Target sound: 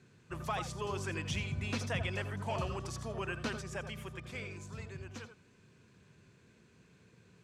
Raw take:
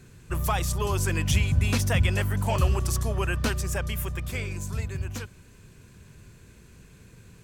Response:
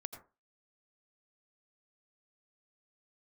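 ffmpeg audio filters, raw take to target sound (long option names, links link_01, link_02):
-filter_complex "[0:a]highpass=130,lowpass=5600[link_01];[1:a]atrim=start_sample=2205,atrim=end_sample=3969[link_02];[link_01][link_02]afir=irnorm=-1:irlink=0,volume=-5dB"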